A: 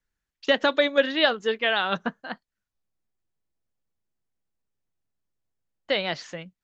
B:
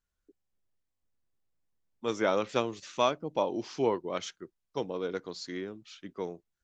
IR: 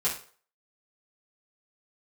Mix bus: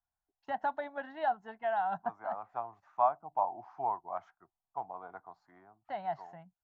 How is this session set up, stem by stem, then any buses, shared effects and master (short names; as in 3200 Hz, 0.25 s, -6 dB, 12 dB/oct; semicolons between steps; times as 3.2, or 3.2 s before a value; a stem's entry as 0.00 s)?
-4.5 dB, 0.00 s, no send, notch comb 1200 Hz
+2.0 dB, 0.00 s, no send, three-band isolator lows -15 dB, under 390 Hz, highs -13 dB, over 2100 Hz; auto duck -7 dB, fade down 0.70 s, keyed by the first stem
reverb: off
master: EQ curve 110 Hz 0 dB, 510 Hz -24 dB, 720 Hz +7 dB, 3100 Hz -27 dB